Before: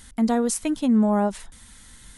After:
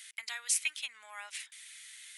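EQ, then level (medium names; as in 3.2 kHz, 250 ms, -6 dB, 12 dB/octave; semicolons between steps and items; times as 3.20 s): ladder high-pass 2 kHz, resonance 55%; +8.0 dB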